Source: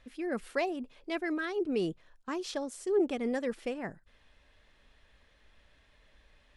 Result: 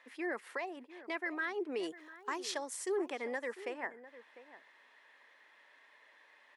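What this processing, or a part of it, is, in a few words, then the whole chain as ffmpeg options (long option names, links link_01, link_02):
laptop speaker: -filter_complex "[0:a]highpass=frequency=310:width=0.5412,highpass=frequency=310:width=1.3066,equalizer=frequency=960:width_type=o:width=0.55:gain=10.5,equalizer=frequency=1900:width_type=o:width=0.52:gain=11,alimiter=level_in=1dB:limit=-24dB:level=0:latency=1:release=440,volume=-1dB,asettb=1/sr,asplit=3[link_01][link_02][link_03];[link_01]atrim=end=1.834[link_04];[link_02]atrim=start=1.83:end=3.1,asetpts=PTS-STARTPTS,afade=type=in:duration=0.004:curve=qsin,afade=type=out:start_time=1.266:duration=0.004:curve=qsin,highshelf=frequency=4000:gain=11[link_05];[link_03]atrim=start=3.096[link_06];[link_04][link_05]acrossfade=duration=0.004:curve1=hsin:curve2=qsin[link_07];[link_07][link_06]acrossfade=duration=0.004:curve1=qsin:curve2=hsin,asplit=2[link_08][link_09];[link_09]adelay=699.7,volume=-15dB,highshelf=frequency=4000:gain=-15.7[link_10];[link_08][link_10]amix=inputs=2:normalize=0,volume=-2.5dB"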